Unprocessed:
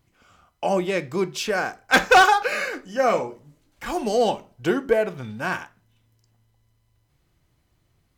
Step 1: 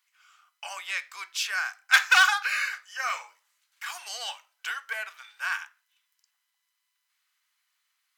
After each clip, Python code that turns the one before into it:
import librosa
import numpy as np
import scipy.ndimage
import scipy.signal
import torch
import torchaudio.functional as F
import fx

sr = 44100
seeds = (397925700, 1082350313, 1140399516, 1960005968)

y = scipy.signal.sosfilt(scipy.signal.cheby2(4, 80, 210.0, 'highpass', fs=sr, output='sos'), x)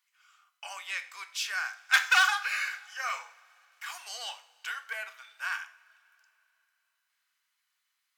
y = fx.rev_double_slope(x, sr, seeds[0], early_s=0.47, late_s=3.4, knee_db=-20, drr_db=10.0)
y = y * librosa.db_to_amplitude(-4.0)